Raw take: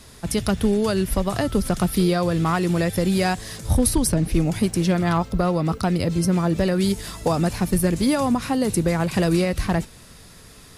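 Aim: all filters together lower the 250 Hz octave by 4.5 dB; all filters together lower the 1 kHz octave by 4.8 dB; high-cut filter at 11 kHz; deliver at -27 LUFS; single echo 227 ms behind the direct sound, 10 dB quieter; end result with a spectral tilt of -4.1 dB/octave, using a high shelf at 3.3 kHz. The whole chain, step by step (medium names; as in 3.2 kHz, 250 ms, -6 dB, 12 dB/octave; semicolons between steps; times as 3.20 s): low-pass 11 kHz; peaking EQ 250 Hz -7 dB; peaking EQ 1 kHz -7 dB; treble shelf 3.3 kHz +7.5 dB; delay 227 ms -10 dB; trim -4 dB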